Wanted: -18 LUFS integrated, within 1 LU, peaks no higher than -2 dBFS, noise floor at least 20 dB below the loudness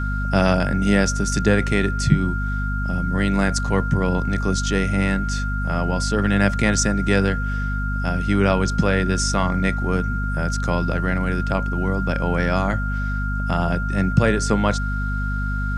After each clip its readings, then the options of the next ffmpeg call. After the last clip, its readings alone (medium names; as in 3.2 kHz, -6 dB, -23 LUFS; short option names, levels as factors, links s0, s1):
hum 50 Hz; highest harmonic 250 Hz; hum level -21 dBFS; steady tone 1.4 kHz; tone level -28 dBFS; loudness -21.5 LUFS; peak level -1.5 dBFS; loudness target -18.0 LUFS
-> -af "bandreject=f=50:t=h:w=6,bandreject=f=100:t=h:w=6,bandreject=f=150:t=h:w=6,bandreject=f=200:t=h:w=6,bandreject=f=250:t=h:w=6"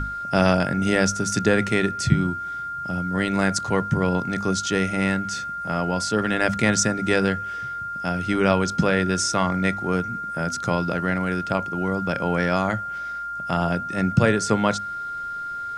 hum not found; steady tone 1.4 kHz; tone level -28 dBFS
-> -af "bandreject=f=1400:w=30"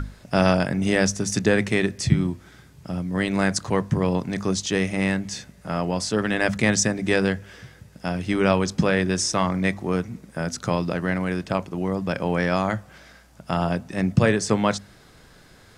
steady tone not found; loudness -23.5 LUFS; peak level -4.0 dBFS; loudness target -18.0 LUFS
-> -af "volume=1.88,alimiter=limit=0.794:level=0:latency=1"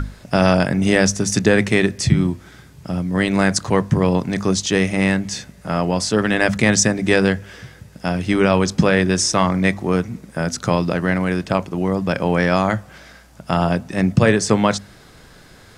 loudness -18.5 LUFS; peak level -2.0 dBFS; noise floor -46 dBFS